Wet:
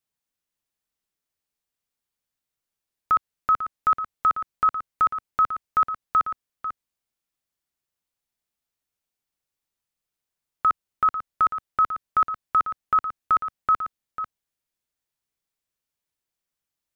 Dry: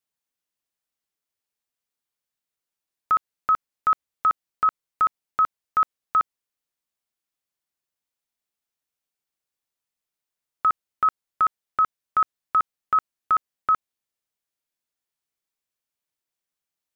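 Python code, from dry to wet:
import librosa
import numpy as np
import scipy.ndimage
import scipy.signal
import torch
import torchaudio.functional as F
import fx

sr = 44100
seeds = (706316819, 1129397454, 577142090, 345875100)

y = fx.low_shelf(x, sr, hz=160.0, db=7.5)
y = y + 10.0 ** (-10.5 / 20.0) * np.pad(y, (int(495 * sr / 1000.0), 0))[:len(y)]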